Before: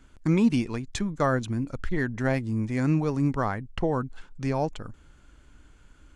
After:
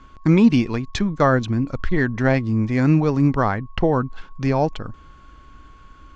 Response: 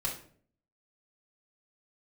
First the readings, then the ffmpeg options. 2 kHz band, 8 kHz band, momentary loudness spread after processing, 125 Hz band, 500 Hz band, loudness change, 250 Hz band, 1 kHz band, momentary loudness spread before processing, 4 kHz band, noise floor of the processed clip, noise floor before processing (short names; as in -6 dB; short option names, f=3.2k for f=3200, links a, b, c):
+7.5 dB, n/a, 9 LU, +7.5 dB, +7.5 dB, +7.5 dB, +7.5 dB, +7.5 dB, 9 LU, +7.0 dB, -47 dBFS, -56 dBFS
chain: -af "aeval=exprs='val(0)+0.00141*sin(2*PI*1100*n/s)':c=same,lowpass=f=5.7k:w=0.5412,lowpass=f=5.7k:w=1.3066,volume=7.5dB"